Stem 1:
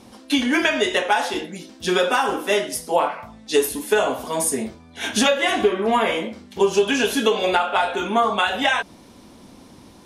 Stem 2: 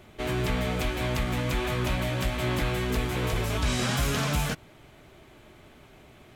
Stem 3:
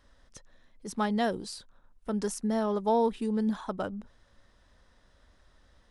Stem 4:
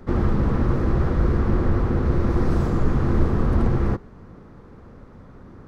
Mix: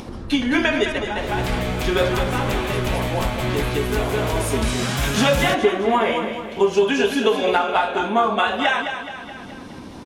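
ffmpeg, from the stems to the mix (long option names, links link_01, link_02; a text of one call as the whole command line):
ffmpeg -i stem1.wav -i stem2.wav -i stem3.wav -i stem4.wav -filter_complex "[0:a]lowpass=frequency=3300:poles=1,volume=0.5dB,asplit=2[link_01][link_02];[link_02]volume=-8dB[link_03];[1:a]dynaudnorm=framelen=130:gausssize=5:maxgain=10.5dB,adelay=1000,volume=-6.5dB[link_04];[2:a]acompressor=threshold=-37dB:ratio=2,volume=-2.5dB,asplit=2[link_05][link_06];[3:a]volume=-15.5dB[link_07];[link_06]apad=whole_len=443216[link_08];[link_01][link_08]sidechaincompress=threshold=-44dB:ratio=8:attack=7.6:release=765[link_09];[link_03]aecho=0:1:212|424|636|848|1060|1272:1|0.43|0.185|0.0795|0.0342|0.0147[link_10];[link_09][link_04][link_05][link_07][link_10]amix=inputs=5:normalize=0,acompressor=mode=upward:threshold=-27dB:ratio=2.5" out.wav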